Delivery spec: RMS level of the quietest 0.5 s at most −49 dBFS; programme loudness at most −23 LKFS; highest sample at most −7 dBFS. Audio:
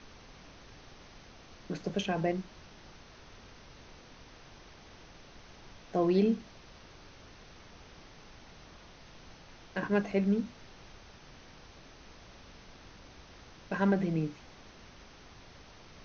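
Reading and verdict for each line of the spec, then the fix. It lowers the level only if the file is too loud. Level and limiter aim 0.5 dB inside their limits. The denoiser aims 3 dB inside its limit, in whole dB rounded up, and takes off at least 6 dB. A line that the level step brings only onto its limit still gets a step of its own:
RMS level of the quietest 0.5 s −53 dBFS: in spec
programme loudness −31.5 LKFS: in spec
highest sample −15.0 dBFS: in spec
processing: no processing needed

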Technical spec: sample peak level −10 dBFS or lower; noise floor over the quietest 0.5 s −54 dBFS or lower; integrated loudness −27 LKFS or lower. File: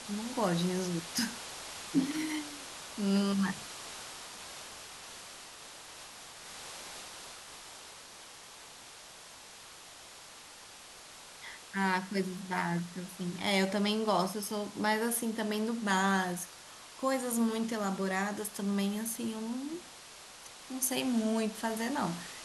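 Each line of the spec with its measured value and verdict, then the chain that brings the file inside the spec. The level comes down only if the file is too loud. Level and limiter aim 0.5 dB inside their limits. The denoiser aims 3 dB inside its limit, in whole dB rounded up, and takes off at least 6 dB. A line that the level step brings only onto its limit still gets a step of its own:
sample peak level −15.5 dBFS: in spec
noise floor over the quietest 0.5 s −51 dBFS: out of spec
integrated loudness −33.5 LKFS: in spec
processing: broadband denoise 6 dB, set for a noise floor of −51 dBFS

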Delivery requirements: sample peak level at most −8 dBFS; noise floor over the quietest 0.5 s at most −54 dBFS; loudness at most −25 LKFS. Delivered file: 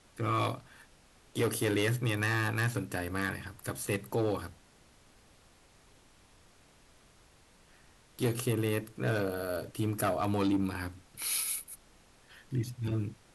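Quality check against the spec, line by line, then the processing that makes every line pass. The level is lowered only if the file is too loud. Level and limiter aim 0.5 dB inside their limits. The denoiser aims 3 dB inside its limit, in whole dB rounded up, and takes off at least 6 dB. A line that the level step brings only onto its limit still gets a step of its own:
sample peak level −18.0 dBFS: in spec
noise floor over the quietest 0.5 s −61 dBFS: in spec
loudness −32.5 LKFS: in spec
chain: no processing needed

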